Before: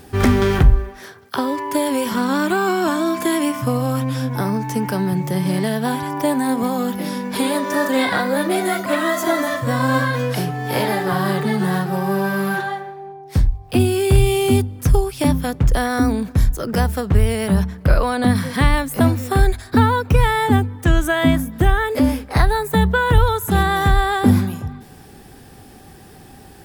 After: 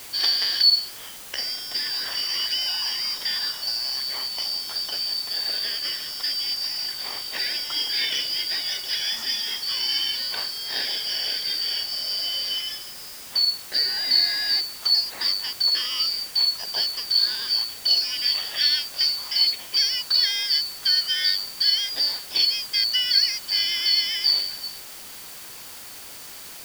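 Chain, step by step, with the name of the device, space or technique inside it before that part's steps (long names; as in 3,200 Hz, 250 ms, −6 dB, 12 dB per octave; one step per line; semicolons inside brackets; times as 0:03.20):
split-band scrambled radio (band-splitting scrambler in four parts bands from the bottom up 4321; band-pass filter 350–3,100 Hz; white noise bed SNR 15 dB)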